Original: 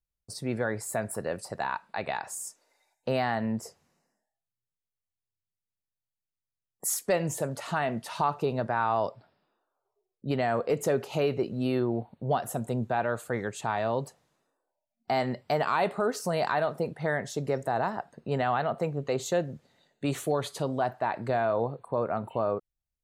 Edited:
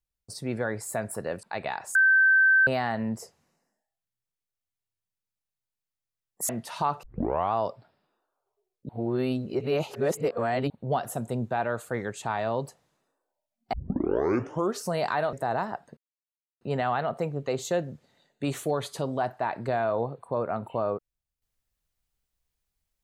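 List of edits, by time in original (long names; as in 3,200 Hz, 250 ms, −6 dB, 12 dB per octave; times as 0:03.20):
0:01.43–0:01.86: remove
0:02.38–0:03.10: beep over 1,550 Hz −16 dBFS
0:06.92–0:07.88: remove
0:08.42: tape start 0.50 s
0:10.28–0:12.09: reverse
0:15.12: tape start 1.08 s
0:16.72–0:17.58: remove
0:18.22: splice in silence 0.64 s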